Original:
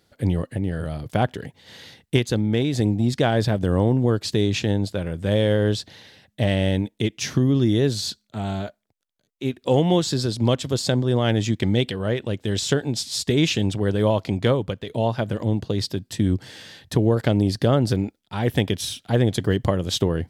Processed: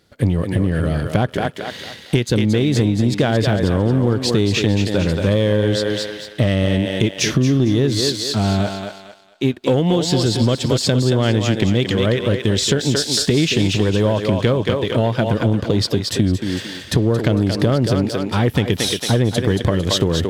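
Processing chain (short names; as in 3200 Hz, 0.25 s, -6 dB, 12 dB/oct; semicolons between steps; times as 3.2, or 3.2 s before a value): on a send: thinning echo 0.226 s, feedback 41%, high-pass 380 Hz, level -5.5 dB; on the sum: compressor, threshold -23 dBFS, peak gain reduction 10 dB; high shelf 6800 Hz -5 dB; sample leveller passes 1; bell 790 Hz -4 dB 0.57 oct; gain +7.5 dB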